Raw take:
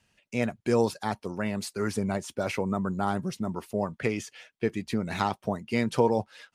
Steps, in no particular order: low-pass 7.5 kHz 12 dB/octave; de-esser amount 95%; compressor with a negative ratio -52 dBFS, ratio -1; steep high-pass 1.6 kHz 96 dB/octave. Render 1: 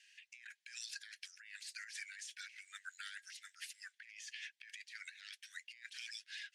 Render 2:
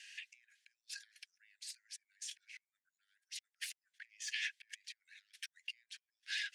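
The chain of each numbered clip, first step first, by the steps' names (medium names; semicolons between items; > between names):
steep high-pass > de-esser > low-pass > compressor with a negative ratio; low-pass > compressor with a negative ratio > steep high-pass > de-esser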